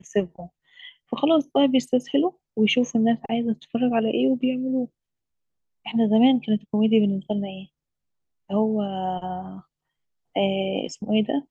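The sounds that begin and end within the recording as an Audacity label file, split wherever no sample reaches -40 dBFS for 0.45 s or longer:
5.860000	7.650000	sound
8.500000	9.600000	sound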